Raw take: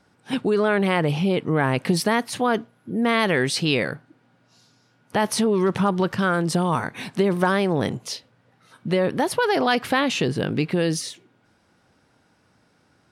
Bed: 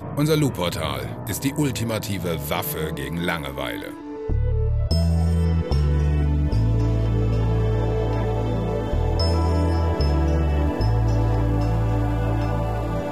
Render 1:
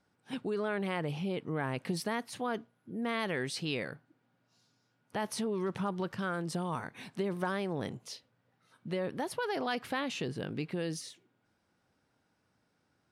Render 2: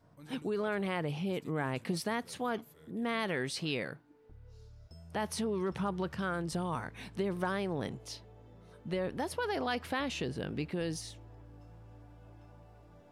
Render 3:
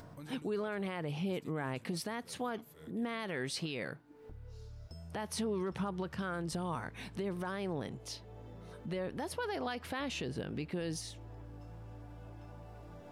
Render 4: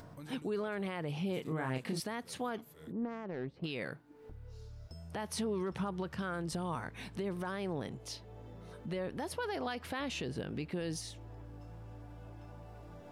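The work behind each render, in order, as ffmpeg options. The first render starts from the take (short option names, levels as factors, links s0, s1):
-af "volume=0.211"
-filter_complex "[1:a]volume=0.0237[s0];[0:a][s0]amix=inputs=2:normalize=0"
-af "alimiter=level_in=1.41:limit=0.0631:level=0:latency=1:release=144,volume=0.708,acompressor=mode=upward:threshold=0.00794:ratio=2.5"
-filter_complex "[0:a]asettb=1/sr,asplit=3[s0][s1][s2];[s0]atrim=end=1.344[s3];[s1]atrim=start=1.34:end=2,asetpts=PTS-STARTPTS,afade=t=in:d=0.004:c=qsin,afade=t=out:st=0.656:d=0.004:c=qsin,asplit=2[s4][s5];[s5]adelay=31,volume=0.596[s6];[s4][s6]amix=inputs=2:normalize=0,atrim=end_sample=29106[s7];[s2]atrim=start=1.996[s8];[s3][s7]acrossfade=d=0.004:c1=hsin:c2=qsin[s9];[s9][s8]acrossfade=d=0.004:c1=qsin:c2=hsin,asettb=1/sr,asplit=3[s10][s11][s12];[s10]atrim=end=2.924[s13];[s11]atrim=start=2.92:end=3.64,asetpts=PTS-STARTPTS,afade=t=in:d=0.004:c=qsin,afade=t=out:st=0.716:d=0.004:c=qsin,adynamicsmooth=sensitivity=1.5:basefreq=570[s14];[s12]atrim=start=3.636[s15];[s13][s14]acrossfade=d=0.004:c1=hsin:c2=qsin[s16];[s16][s15]acrossfade=d=0.004:c1=qsin:c2=hsin"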